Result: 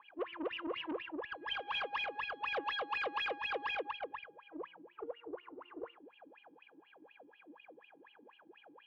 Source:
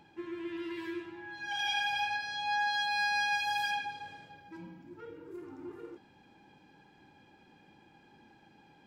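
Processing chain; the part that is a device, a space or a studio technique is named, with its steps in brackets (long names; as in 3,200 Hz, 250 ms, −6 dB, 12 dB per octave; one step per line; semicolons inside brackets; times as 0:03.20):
0:04.28–0:05.59: parametric band 270 Hz −11 dB 0.4 octaves
wah-wah guitar rig (LFO wah 4.1 Hz 280–3,000 Hz, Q 21; tube saturation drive 53 dB, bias 0.4; loudspeaker in its box 80–3,900 Hz, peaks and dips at 490 Hz +9 dB, 1,100 Hz +9 dB, 2,900 Hz +9 dB)
level +16 dB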